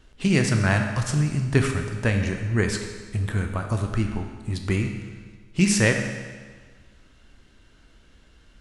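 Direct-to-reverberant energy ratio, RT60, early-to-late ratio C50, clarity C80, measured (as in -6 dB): 4.0 dB, 1.5 s, 5.5 dB, 7.0 dB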